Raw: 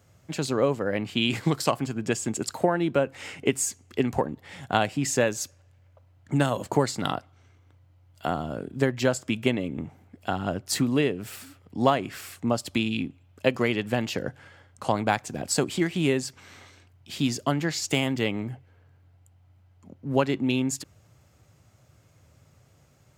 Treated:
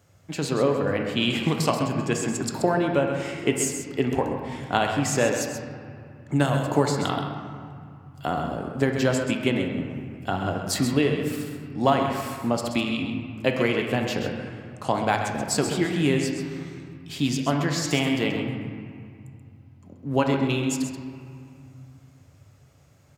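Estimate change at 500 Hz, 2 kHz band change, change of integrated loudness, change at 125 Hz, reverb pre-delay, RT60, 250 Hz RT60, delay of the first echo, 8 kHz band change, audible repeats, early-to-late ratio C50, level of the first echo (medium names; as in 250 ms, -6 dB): +2.0 dB, +2.0 dB, +2.0 dB, +3.0 dB, 3 ms, 2.3 s, 2.8 s, 131 ms, +0.5 dB, 1, 3.5 dB, -8.5 dB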